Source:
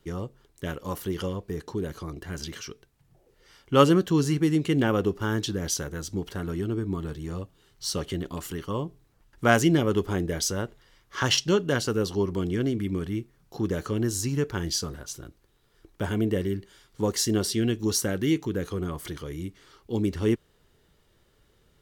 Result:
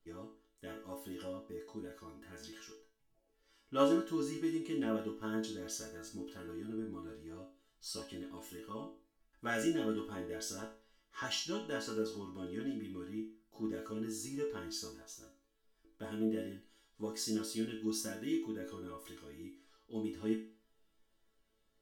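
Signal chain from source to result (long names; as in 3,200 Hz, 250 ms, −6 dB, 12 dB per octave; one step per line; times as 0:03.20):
resonators tuned to a chord A3 major, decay 0.4 s
level +5.5 dB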